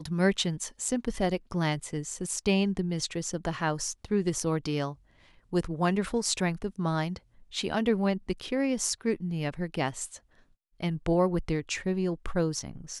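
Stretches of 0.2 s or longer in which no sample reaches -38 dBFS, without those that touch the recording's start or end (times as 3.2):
4.93–5.53
7.17–7.54
10.17–10.8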